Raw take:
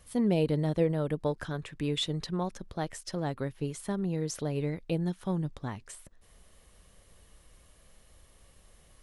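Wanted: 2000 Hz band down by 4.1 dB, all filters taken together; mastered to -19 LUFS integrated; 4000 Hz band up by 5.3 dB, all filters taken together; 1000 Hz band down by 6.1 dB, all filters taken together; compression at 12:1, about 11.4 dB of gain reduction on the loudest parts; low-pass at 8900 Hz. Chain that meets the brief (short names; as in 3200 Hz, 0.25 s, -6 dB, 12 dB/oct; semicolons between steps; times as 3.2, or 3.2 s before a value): LPF 8900 Hz; bell 1000 Hz -8 dB; bell 2000 Hz -5.5 dB; bell 4000 Hz +8.5 dB; compressor 12:1, threshold -34 dBFS; gain +21 dB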